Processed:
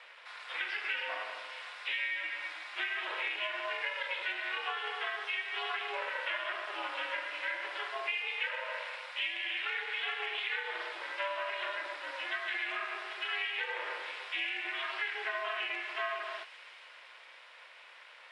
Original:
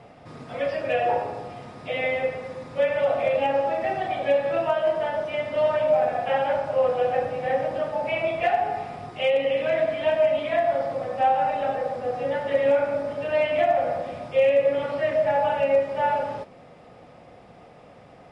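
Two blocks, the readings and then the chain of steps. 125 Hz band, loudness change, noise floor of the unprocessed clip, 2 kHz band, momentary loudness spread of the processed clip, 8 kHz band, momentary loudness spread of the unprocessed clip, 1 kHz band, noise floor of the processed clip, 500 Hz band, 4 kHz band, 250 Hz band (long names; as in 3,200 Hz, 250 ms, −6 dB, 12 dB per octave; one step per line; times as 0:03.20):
below −40 dB, −11.5 dB, −49 dBFS, −0.5 dB, 11 LU, can't be measured, 8 LU, −14.5 dB, −54 dBFS, −24.0 dB, +2.0 dB, −23.0 dB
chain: Butterworth high-pass 880 Hz 36 dB per octave
flat-topped bell 2,500 Hz +9.5 dB
downward compressor, threshold −30 dBFS, peak gain reduction 13 dB
ring modulation 200 Hz
delay with a high-pass on its return 137 ms, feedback 82%, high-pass 4,500 Hz, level −6 dB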